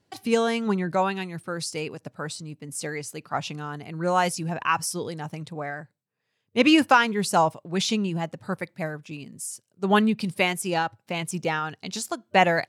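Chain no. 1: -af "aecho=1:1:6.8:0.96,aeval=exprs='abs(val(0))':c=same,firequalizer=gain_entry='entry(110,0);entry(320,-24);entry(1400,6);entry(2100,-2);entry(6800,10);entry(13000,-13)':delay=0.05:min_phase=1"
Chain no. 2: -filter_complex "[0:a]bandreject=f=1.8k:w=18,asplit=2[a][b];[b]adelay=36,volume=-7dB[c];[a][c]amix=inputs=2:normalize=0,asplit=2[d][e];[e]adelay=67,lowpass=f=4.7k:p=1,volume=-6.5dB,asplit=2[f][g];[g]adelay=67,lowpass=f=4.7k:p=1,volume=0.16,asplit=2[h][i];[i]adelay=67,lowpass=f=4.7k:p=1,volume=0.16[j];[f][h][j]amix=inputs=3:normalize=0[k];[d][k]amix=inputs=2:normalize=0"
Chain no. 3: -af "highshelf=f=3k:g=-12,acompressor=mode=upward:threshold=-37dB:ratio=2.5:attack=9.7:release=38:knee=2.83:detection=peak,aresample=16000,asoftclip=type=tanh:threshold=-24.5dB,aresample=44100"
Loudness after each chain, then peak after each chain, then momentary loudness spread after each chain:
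-27.0, -24.5, -32.5 LUFS; -1.5, -4.0, -22.5 dBFS; 17, 14, 9 LU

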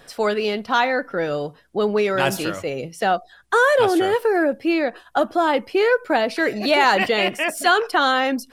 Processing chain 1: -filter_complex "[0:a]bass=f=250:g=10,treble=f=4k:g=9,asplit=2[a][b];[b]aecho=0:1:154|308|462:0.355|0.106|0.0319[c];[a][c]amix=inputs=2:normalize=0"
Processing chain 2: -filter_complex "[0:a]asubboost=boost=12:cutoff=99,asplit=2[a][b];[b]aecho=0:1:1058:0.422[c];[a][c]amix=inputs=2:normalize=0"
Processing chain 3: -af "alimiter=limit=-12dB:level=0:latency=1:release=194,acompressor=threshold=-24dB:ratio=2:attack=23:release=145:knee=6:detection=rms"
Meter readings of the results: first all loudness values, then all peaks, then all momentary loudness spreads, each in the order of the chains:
-18.0, -21.0, -26.0 LUFS; -3.0, -5.5, -13.5 dBFS; 7, 7, 4 LU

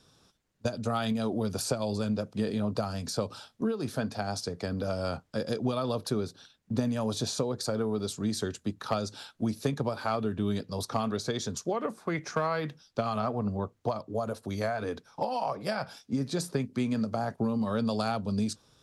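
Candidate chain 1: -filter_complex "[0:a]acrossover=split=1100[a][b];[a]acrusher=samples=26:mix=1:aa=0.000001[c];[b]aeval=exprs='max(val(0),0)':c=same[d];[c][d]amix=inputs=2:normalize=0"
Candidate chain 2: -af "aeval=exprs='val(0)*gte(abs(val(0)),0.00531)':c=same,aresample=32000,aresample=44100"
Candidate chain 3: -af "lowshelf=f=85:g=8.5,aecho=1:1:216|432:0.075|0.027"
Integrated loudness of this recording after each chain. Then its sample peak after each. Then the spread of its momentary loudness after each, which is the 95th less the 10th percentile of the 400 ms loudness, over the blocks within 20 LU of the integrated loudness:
-32.5, -32.0, -31.0 LUFS; -14.5, -14.0, -13.5 dBFS; 5, 4, 5 LU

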